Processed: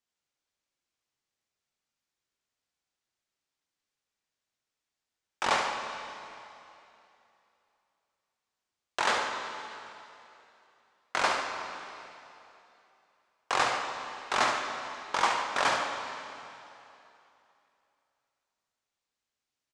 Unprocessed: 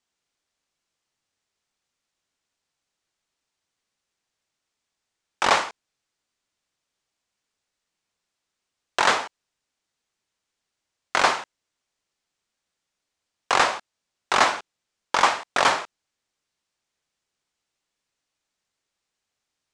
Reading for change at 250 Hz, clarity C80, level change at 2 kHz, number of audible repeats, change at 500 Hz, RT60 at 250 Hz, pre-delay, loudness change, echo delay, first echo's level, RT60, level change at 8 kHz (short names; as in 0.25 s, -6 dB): -6.0 dB, 5.0 dB, -6.0 dB, 2, -6.0 dB, 2.7 s, 4 ms, -8.5 dB, 70 ms, -7.5 dB, 2.9 s, -7.0 dB